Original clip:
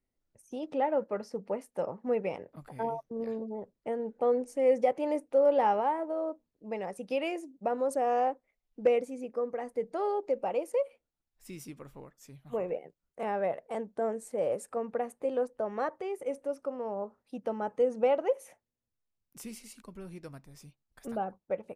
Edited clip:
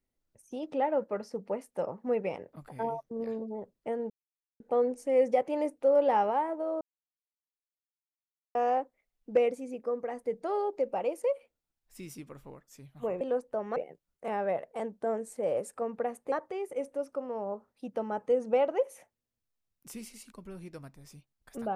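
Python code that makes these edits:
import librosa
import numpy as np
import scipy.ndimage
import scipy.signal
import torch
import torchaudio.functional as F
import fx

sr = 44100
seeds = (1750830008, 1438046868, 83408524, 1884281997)

y = fx.edit(x, sr, fx.insert_silence(at_s=4.1, length_s=0.5),
    fx.silence(start_s=6.31, length_s=1.74),
    fx.move(start_s=15.27, length_s=0.55, to_s=12.71), tone=tone)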